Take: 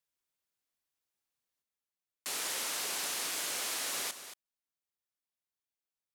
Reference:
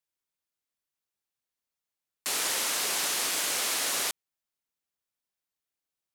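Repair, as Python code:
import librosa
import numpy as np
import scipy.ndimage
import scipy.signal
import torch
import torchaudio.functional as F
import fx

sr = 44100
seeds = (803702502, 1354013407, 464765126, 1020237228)

y = fx.fix_declip(x, sr, threshold_db=-28.0)
y = fx.fix_echo_inverse(y, sr, delay_ms=227, level_db=-11.5)
y = fx.gain(y, sr, db=fx.steps((0.0, 0.0), (1.62, 7.0)))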